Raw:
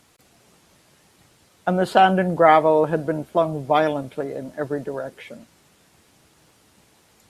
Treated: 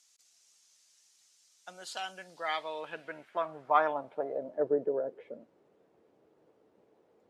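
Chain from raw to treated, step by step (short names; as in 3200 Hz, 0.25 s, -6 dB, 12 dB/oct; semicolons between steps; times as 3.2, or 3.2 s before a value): band-pass sweep 6200 Hz -> 450 Hz, 2.13–4.7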